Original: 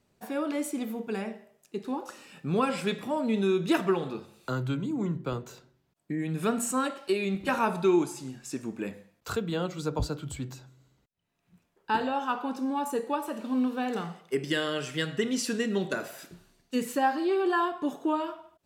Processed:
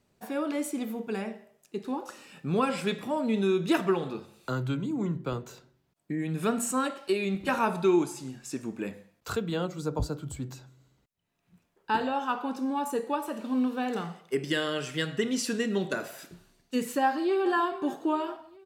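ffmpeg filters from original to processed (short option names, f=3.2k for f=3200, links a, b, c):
-filter_complex "[0:a]asettb=1/sr,asplit=3[a][b][c];[a]atrim=end=9.654[d];[b]atrim=start=9.65:end=10.51,asetpts=PTS-STARTPTS,afade=t=in:d=0.004:c=qsin,afade=t=out:st=0.856:d=0.004:c=qsin,equalizer=f=2.8k:t=o:w=1.7:g=-7[e];[c]atrim=start=10.506[f];[d][e]acrossfade=d=0.004:c1=hsin:c2=qsin[g];[g][f]acrossfade=d=0.004:c1=qsin:c2=hsin,asplit=2[h][i];[i]afade=t=in:st=17.03:d=0.01,afade=t=out:st=17.52:d=0.01,aecho=0:1:420|840|1260|1680|2100:0.177828|0.088914|0.044457|0.0222285|0.0111142[j];[h][j]amix=inputs=2:normalize=0"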